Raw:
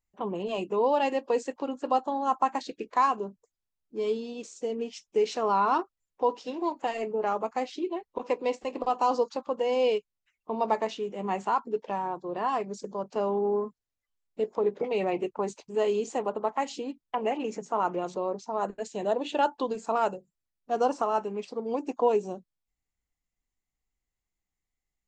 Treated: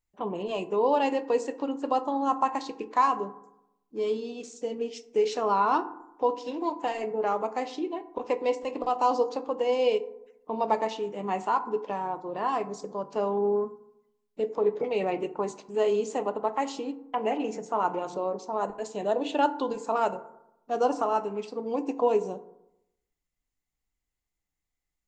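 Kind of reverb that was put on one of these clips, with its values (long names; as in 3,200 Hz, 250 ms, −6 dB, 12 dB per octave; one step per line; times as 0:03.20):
feedback delay network reverb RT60 0.84 s, low-frequency decay 1.1×, high-frequency decay 0.4×, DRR 10.5 dB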